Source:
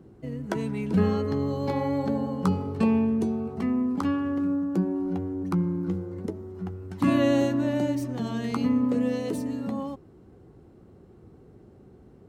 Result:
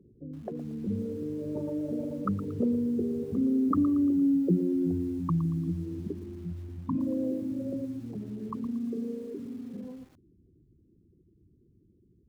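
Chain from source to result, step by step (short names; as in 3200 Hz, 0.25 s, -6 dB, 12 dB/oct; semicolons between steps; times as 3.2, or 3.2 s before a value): formant sharpening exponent 3; Doppler pass-by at 4.11, 26 m/s, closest 21 m; in parallel at +2 dB: compressor 8:1, threshold -40 dBFS, peak gain reduction 18.5 dB; on the sum: lo-fi delay 0.115 s, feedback 35%, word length 8-bit, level -14 dB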